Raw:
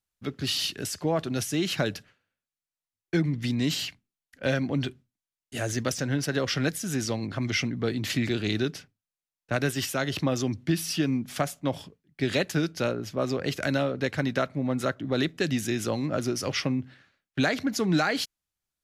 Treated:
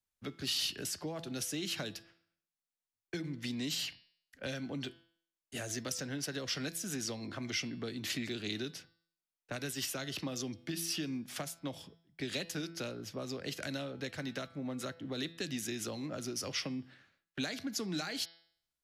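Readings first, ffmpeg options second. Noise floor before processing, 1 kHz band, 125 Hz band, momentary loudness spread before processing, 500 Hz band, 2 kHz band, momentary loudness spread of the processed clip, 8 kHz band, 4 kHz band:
under -85 dBFS, -14.0 dB, -14.5 dB, 6 LU, -13.5 dB, -11.0 dB, 8 LU, -4.5 dB, -6.0 dB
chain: -filter_complex "[0:a]acrossover=split=220[s0][s1];[s0]acompressor=threshold=0.00631:ratio=6[s2];[s2][s1]amix=inputs=2:normalize=0,bandreject=f=167.2:t=h:w=4,bandreject=f=334.4:t=h:w=4,bandreject=f=501.6:t=h:w=4,bandreject=f=668.8:t=h:w=4,bandreject=f=836:t=h:w=4,bandreject=f=1003.2:t=h:w=4,bandreject=f=1170.4:t=h:w=4,bandreject=f=1337.6:t=h:w=4,bandreject=f=1504.8:t=h:w=4,bandreject=f=1672:t=h:w=4,bandreject=f=1839.2:t=h:w=4,bandreject=f=2006.4:t=h:w=4,bandreject=f=2173.6:t=h:w=4,bandreject=f=2340.8:t=h:w=4,bandreject=f=2508:t=h:w=4,bandreject=f=2675.2:t=h:w=4,bandreject=f=2842.4:t=h:w=4,bandreject=f=3009.6:t=h:w=4,bandreject=f=3176.8:t=h:w=4,bandreject=f=3344:t=h:w=4,bandreject=f=3511.2:t=h:w=4,bandreject=f=3678.4:t=h:w=4,bandreject=f=3845.6:t=h:w=4,bandreject=f=4012.8:t=h:w=4,bandreject=f=4180:t=h:w=4,bandreject=f=4347.2:t=h:w=4,bandreject=f=4514.4:t=h:w=4,bandreject=f=4681.6:t=h:w=4,bandreject=f=4848.8:t=h:w=4,bandreject=f=5016:t=h:w=4,bandreject=f=5183.2:t=h:w=4,bandreject=f=5350.4:t=h:w=4,bandreject=f=5517.6:t=h:w=4,acrossover=split=210|3000[s3][s4][s5];[s4]acompressor=threshold=0.0158:ratio=6[s6];[s3][s6][s5]amix=inputs=3:normalize=0,volume=0.596"

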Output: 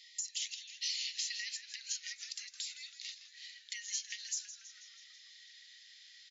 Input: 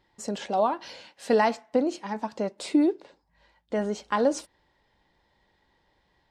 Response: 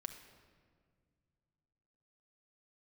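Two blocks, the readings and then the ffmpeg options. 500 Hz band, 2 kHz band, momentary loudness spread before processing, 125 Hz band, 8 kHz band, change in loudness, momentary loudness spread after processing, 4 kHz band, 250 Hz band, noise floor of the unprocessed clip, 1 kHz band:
under -40 dB, -9.0 dB, 13 LU, no reading, +5.5 dB, -12.5 dB, 18 LU, +4.0 dB, under -40 dB, -70 dBFS, under -40 dB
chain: -filter_complex "[0:a]aderivative,acompressor=threshold=0.00158:ratio=16,highshelf=f=2700:g=10.5,afftfilt=real='re*between(b*sr/4096,1800,7400)':imag='im*between(b*sr/4096,1800,7400)':win_size=4096:overlap=0.75,alimiter=level_in=9.44:limit=0.0631:level=0:latency=1:release=414,volume=0.106,asplit=8[s0][s1][s2][s3][s4][s5][s6][s7];[s1]adelay=163,afreqshift=-100,volume=0.237[s8];[s2]adelay=326,afreqshift=-200,volume=0.145[s9];[s3]adelay=489,afreqshift=-300,volume=0.0881[s10];[s4]adelay=652,afreqshift=-400,volume=0.0537[s11];[s5]adelay=815,afreqshift=-500,volume=0.0327[s12];[s6]adelay=978,afreqshift=-600,volume=0.02[s13];[s7]adelay=1141,afreqshift=-700,volume=0.0122[s14];[s0][s8][s9][s10][s11][s12][s13][s14]amix=inputs=8:normalize=0,volume=7.94"

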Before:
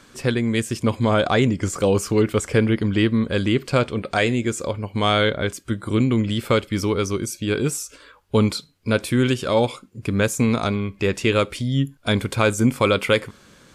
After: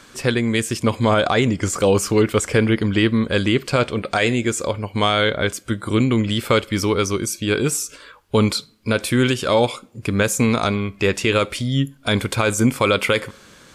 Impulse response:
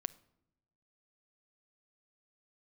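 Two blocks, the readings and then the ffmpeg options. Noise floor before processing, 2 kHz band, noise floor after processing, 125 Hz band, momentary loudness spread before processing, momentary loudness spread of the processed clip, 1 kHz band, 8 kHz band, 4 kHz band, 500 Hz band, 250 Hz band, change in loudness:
-52 dBFS, +3.0 dB, -48 dBFS, +0.5 dB, 7 LU, 5 LU, +2.5 dB, +5.0 dB, +3.5 dB, +1.5 dB, +1.0 dB, +2.0 dB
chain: -filter_complex "[0:a]asplit=2[s0][s1];[s1]highpass=190[s2];[1:a]atrim=start_sample=2205,lowshelf=f=370:g=-10[s3];[s2][s3]afir=irnorm=-1:irlink=0,volume=0.631[s4];[s0][s4]amix=inputs=2:normalize=0,alimiter=level_in=2.11:limit=0.891:release=50:level=0:latency=1,volume=0.562"

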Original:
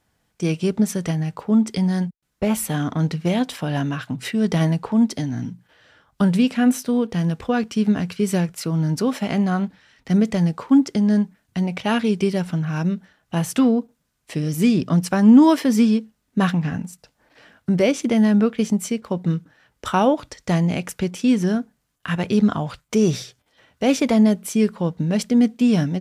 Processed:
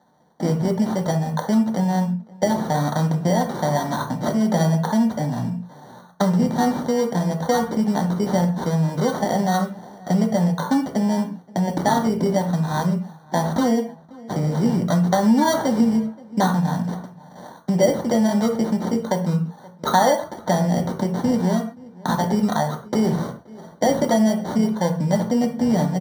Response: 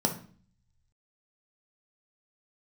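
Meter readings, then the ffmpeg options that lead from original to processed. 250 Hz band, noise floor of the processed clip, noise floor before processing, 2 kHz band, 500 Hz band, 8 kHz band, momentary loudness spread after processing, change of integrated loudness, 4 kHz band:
-2.0 dB, -46 dBFS, -71 dBFS, -1.0 dB, +2.0 dB, 0.0 dB, 7 LU, -1.0 dB, -1.0 dB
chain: -filter_complex "[0:a]lowshelf=f=440:t=q:w=1.5:g=-11.5,acrossover=split=180|3600[s0][s1][s2];[s2]aeval=exprs='(mod(35.5*val(0)+1,2)-1)/35.5':c=same[s3];[s0][s1][s3]amix=inputs=3:normalize=0,acrusher=samples=17:mix=1:aa=0.000001,asplit=2[s4][s5];[s5]adelay=524.8,volume=0.0447,highshelf=f=4000:g=-11.8[s6];[s4][s6]amix=inputs=2:normalize=0[s7];[1:a]atrim=start_sample=2205,atrim=end_sample=6615[s8];[s7][s8]afir=irnorm=-1:irlink=0,acompressor=threshold=0.112:ratio=2,volume=0.841"

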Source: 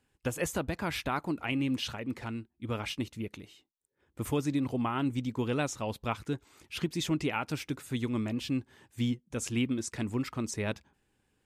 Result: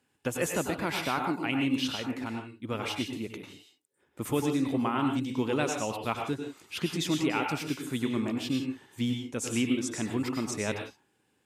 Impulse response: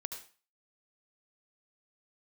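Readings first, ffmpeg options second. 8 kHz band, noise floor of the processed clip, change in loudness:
+3.5 dB, -73 dBFS, +2.5 dB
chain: -filter_complex "[0:a]highpass=140[s0];[1:a]atrim=start_sample=2205,atrim=end_sample=6174,asetrate=33075,aresample=44100[s1];[s0][s1]afir=irnorm=-1:irlink=0,volume=1.41"

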